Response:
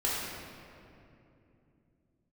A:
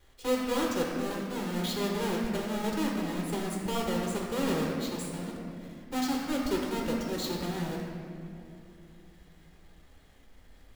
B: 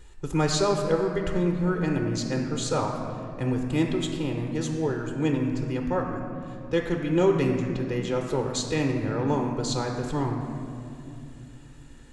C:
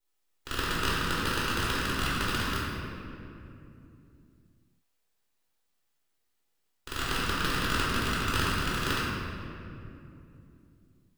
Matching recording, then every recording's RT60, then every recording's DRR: C; 2.8 s, 2.8 s, 2.8 s; -2.0 dB, 2.5 dB, -8.0 dB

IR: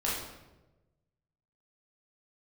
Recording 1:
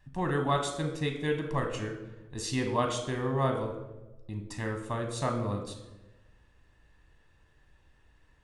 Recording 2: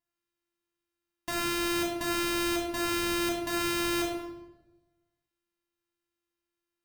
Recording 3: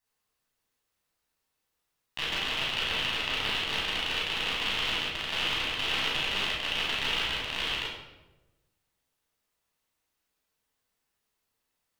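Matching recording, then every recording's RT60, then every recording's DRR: 3; 1.1 s, 1.1 s, 1.1 s; 4.0 dB, -1.5 dB, -7.0 dB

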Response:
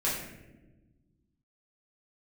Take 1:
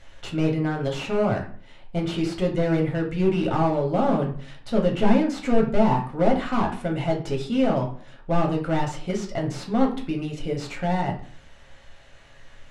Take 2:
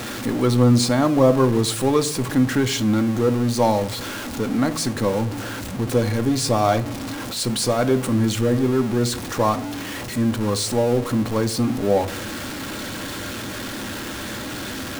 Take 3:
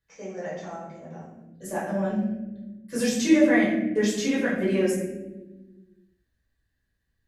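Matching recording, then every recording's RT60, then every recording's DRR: 3; 0.45 s, no single decay rate, 1.1 s; 0.0 dB, 8.5 dB, -7.5 dB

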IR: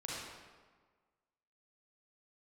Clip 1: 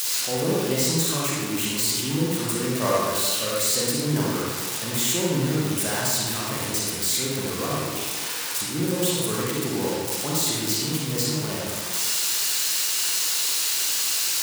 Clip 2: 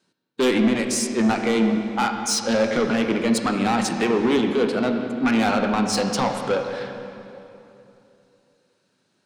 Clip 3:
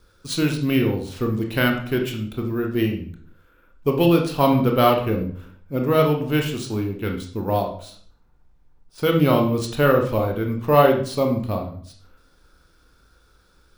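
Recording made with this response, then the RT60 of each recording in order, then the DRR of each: 1; 1.5 s, 3.0 s, 0.55 s; -6.0 dB, 4.0 dB, 2.0 dB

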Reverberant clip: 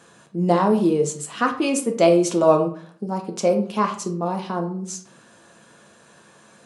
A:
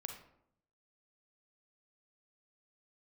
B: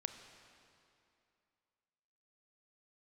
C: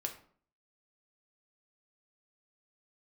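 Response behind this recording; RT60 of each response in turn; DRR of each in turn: C; 0.75 s, 2.6 s, 0.50 s; 4.0 dB, 7.5 dB, 3.0 dB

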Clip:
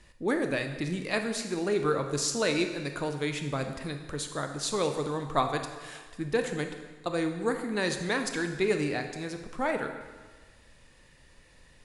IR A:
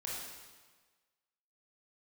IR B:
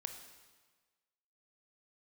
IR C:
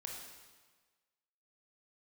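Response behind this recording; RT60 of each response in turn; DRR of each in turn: B; 1.4 s, 1.4 s, 1.4 s; -5.5 dB, 5.5 dB, -1.0 dB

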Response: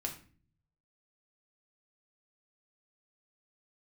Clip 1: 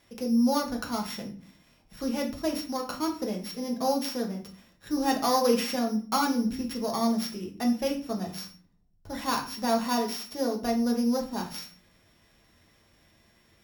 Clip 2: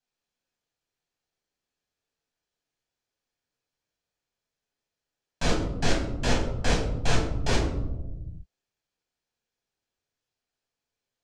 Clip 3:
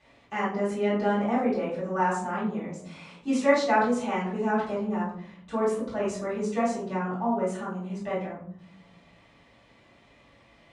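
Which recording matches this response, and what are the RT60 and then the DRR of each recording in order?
1; 0.40 s, 1.1 s, 0.60 s; 1.0 dB, -3.5 dB, -11.0 dB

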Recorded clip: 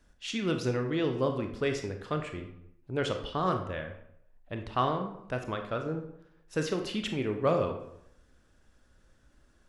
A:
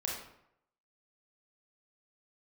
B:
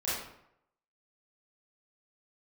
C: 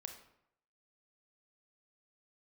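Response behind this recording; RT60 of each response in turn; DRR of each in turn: C; 0.75 s, 0.75 s, 0.75 s; -3.0 dB, -11.0 dB, 4.5 dB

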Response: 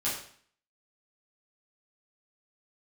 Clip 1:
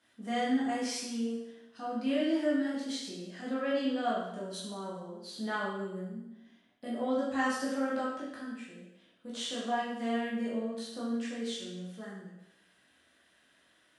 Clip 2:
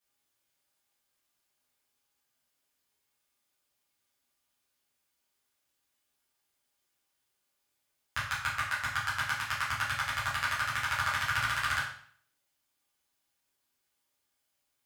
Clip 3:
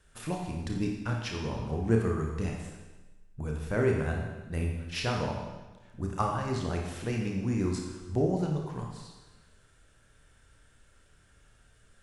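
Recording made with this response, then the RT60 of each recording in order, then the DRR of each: 2; 0.90 s, 0.55 s, 1.2 s; -6.5 dB, -9.5 dB, 0.0 dB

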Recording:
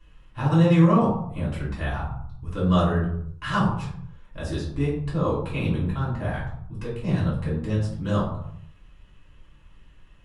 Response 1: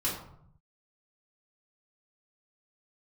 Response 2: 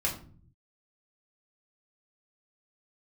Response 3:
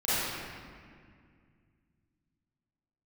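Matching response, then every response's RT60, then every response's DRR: 1; 0.70 s, 0.45 s, 2.1 s; -7.5 dB, -4.0 dB, -14.0 dB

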